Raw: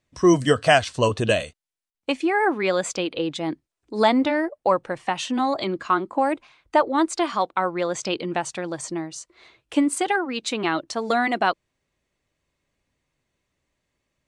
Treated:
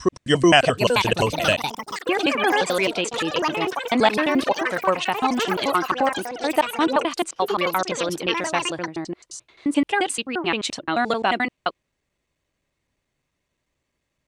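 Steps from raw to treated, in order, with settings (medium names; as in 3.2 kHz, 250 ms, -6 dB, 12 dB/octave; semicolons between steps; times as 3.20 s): slices played last to first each 87 ms, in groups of 3; ever faster or slower copies 591 ms, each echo +6 st, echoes 3, each echo -6 dB; dynamic bell 2.8 kHz, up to +6 dB, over -41 dBFS, Q 2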